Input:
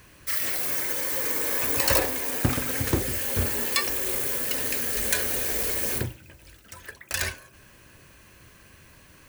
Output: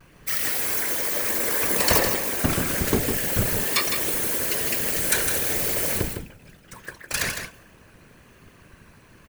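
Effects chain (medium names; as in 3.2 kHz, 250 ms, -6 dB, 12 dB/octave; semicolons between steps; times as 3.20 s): whisper effect; vibrato 1.1 Hz 55 cents; delay 157 ms -7 dB; tape noise reduction on one side only decoder only; trim +2.5 dB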